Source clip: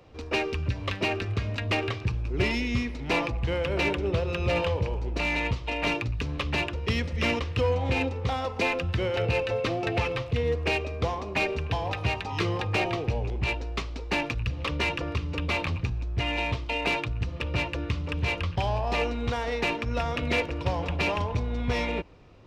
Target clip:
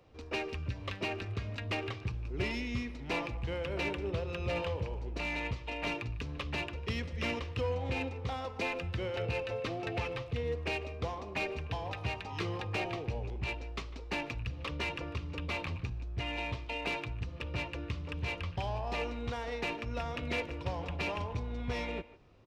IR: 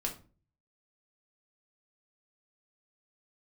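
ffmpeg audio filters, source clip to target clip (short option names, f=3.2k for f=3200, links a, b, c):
-filter_complex "[0:a]asplit=2[a][b];[b]adelay=150,highpass=300,lowpass=3.4k,asoftclip=type=hard:threshold=-20dB,volume=-17dB[c];[a][c]amix=inputs=2:normalize=0,volume=-8.5dB"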